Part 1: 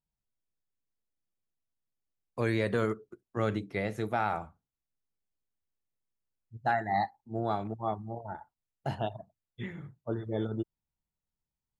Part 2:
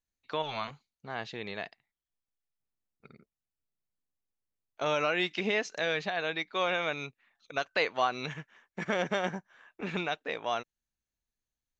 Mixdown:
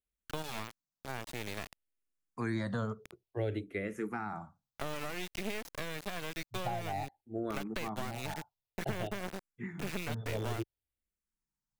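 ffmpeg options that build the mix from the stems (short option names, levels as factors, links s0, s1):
-filter_complex "[0:a]asplit=2[s0][s1];[s1]afreqshift=-0.55[s2];[s0][s2]amix=inputs=2:normalize=1,volume=0.944[s3];[1:a]acompressor=threshold=0.0224:ratio=5,acrusher=bits=4:dc=4:mix=0:aa=0.000001,volume=1.26[s4];[s3][s4]amix=inputs=2:normalize=0,acrossover=split=430[s5][s6];[s6]acompressor=threshold=0.0141:ratio=6[s7];[s5][s7]amix=inputs=2:normalize=0"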